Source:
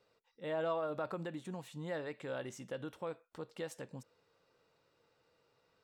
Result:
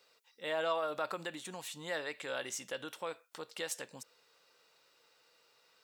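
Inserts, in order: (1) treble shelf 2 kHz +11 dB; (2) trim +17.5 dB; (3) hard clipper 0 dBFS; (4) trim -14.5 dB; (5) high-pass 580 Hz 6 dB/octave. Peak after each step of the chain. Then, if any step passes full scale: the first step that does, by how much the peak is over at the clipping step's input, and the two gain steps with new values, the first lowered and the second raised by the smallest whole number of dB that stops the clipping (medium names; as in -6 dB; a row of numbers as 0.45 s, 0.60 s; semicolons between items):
-22.5 dBFS, -5.0 dBFS, -5.0 dBFS, -19.5 dBFS, -21.5 dBFS; nothing clips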